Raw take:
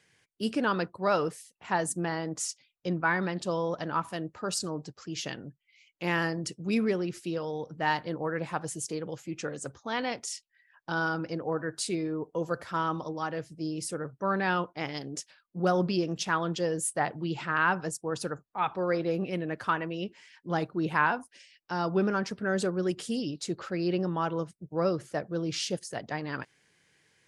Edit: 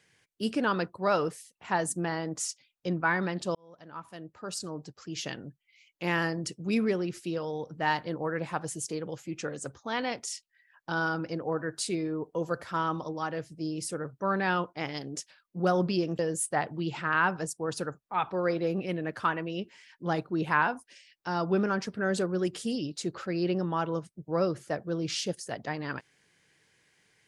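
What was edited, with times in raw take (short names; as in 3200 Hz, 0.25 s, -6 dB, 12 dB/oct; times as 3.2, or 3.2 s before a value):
3.55–5.3 fade in
16.19–16.63 cut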